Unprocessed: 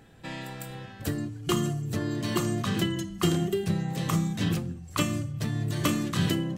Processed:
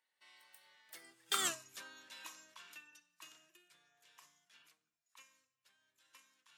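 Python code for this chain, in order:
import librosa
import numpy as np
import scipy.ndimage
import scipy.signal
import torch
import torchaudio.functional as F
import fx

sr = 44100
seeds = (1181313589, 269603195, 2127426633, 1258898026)

y = fx.doppler_pass(x, sr, speed_mps=40, closest_m=2.0, pass_at_s=1.47)
y = scipy.signal.sosfilt(scipy.signal.butter(2, 1300.0, 'highpass', fs=sr, output='sos'), y)
y = y * librosa.db_to_amplitude(7.5)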